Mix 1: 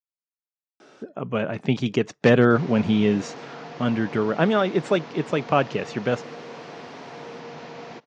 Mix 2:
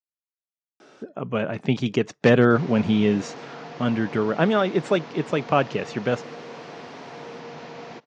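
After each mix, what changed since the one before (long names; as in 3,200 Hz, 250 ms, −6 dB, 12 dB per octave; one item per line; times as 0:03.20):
nothing changed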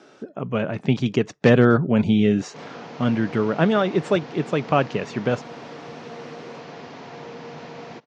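speech: entry −0.80 s
master: add low-shelf EQ 210 Hz +4.5 dB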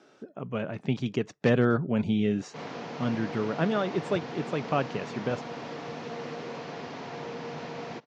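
speech −8.0 dB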